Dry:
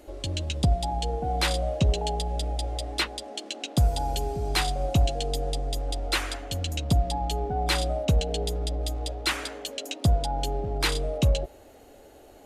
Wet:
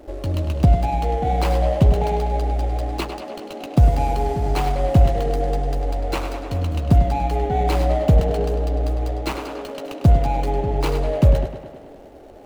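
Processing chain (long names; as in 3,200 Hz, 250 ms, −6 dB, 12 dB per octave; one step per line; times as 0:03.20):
running median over 25 samples
tape delay 101 ms, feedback 72%, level −8.5 dB, low-pass 5,900 Hz
level +8 dB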